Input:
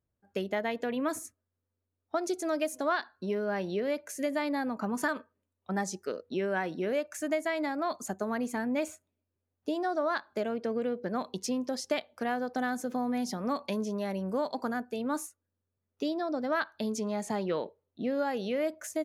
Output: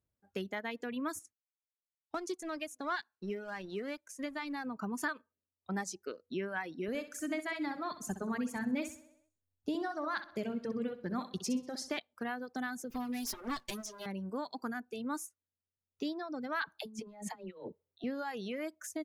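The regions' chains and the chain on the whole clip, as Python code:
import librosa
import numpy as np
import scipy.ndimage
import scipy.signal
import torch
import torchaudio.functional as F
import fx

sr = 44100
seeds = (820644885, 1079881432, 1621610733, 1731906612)

y = fx.chain(x, sr, fx.law_mismatch(coded='A'),
    fx.lowpass(hz=11000.0, slope=12), at=(1.19, 4.66))
y = fx.chain(y, sr, fx.low_shelf(hz=130.0, db=12.0),
    fx.echo_feedback(ms=64, feedback_pct=56, wet_db=-6.0), at=(6.88, 11.99))
y = fx.chain(y, sr, fx.lower_of_two(delay_ms=8.0),
    fx.high_shelf(hz=4200.0, db=10.5), at=(12.9, 14.06))
y = fx.chain(y, sr, fx.peak_eq(hz=5000.0, db=-3.5, octaves=0.77),
    fx.dispersion(late='lows', ms=62.0, hz=410.0),
    fx.over_compress(threshold_db=-37.0, ratio=-0.5), at=(16.62, 18.04))
y = fx.dereverb_blind(y, sr, rt60_s=1.6)
y = fx.dynamic_eq(y, sr, hz=600.0, q=1.8, threshold_db=-46.0, ratio=4.0, max_db=-8)
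y = y * 10.0 ** (-3.0 / 20.0)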